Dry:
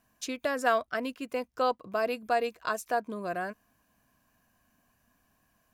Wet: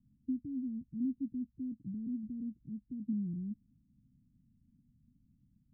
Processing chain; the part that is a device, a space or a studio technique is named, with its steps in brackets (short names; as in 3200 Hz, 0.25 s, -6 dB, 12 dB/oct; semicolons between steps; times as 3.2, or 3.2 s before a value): elliptic band-stop 270–5400 Hz, stop band 40 dB; the neighbour's flat through the wall (LPF 270 Hz 24 dB/oct; bell 140 Hz +7 dB); gain +4.5 dB